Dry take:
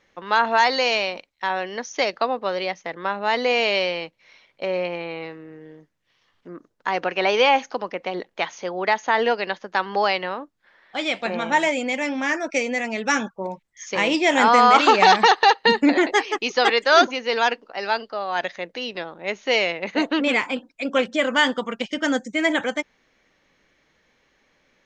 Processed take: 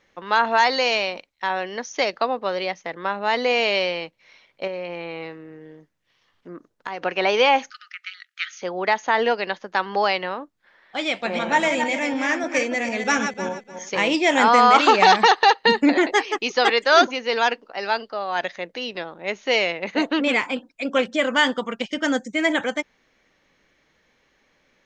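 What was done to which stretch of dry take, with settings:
4.67–7.05 compressor, threshold -26 dBFS
7.7–8.62 brick-wall FIR high-pass 1200 Hz
11.09–13.96 regenerating reverse delay 0.15 s, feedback 45%, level -6.5 dB

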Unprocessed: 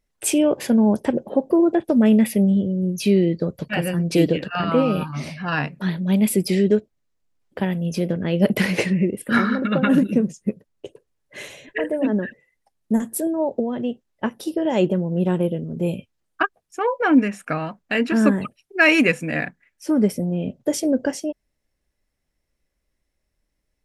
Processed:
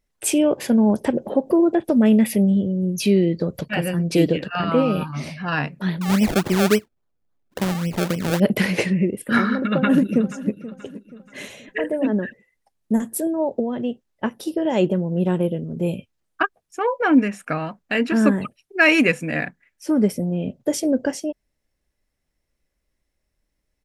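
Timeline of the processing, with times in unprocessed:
0.9–3.61 upward compressor, threshold -20 dBFS
6.01–8.4 decimation with a swept rate 31× 3.6 Hz
9.65–10.5 echo throw 0.48 s, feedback 40%, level -16 dB

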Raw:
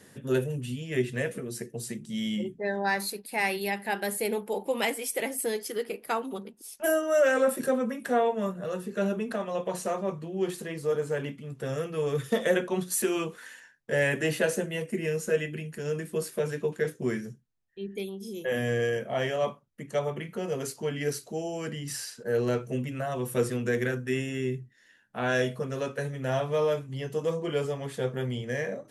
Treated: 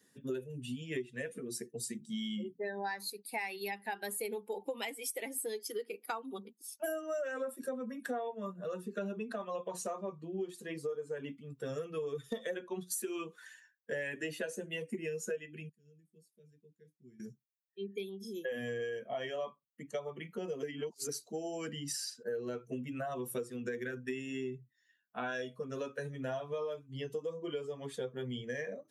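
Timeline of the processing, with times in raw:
15.69–17.2 passive tone stack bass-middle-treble 10-0-1
20.63–21.09 reverse
whole clip: per-bin expansion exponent 1.5; HPF 230 Hz 12 dB/oct; compressor 10:1, threshold -40 dBFS; gain +5 dB

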